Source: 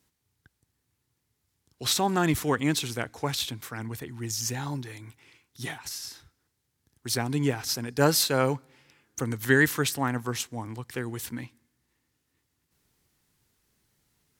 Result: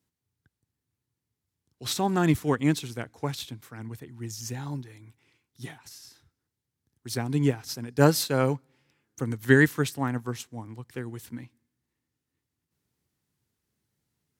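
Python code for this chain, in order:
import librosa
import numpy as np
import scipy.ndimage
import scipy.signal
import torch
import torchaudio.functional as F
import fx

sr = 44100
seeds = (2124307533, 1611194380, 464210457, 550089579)

y = scipy.signal.sosfilt(scipy.signal.butter(2, 77.0, 'highpass', fs=sr, output='sos'), x)
y = fx.low_shelf(y, sr, hz=400.0, db=7.0)
y = fx.upward_expand(y, sr, threshold_db=-35.0, expansion=1.5)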